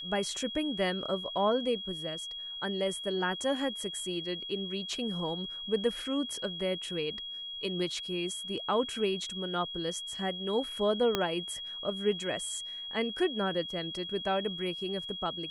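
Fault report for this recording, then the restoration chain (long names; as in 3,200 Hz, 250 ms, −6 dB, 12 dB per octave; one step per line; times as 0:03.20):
whistle 3,300 Hz −38 dBFS
0:11.15: click −13 dBFS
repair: click removal
notch filter 3,300 Hz, Q 30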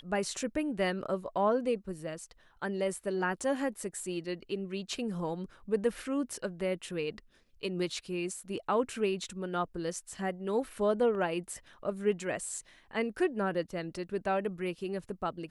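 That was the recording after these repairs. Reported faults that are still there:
0:11.15: click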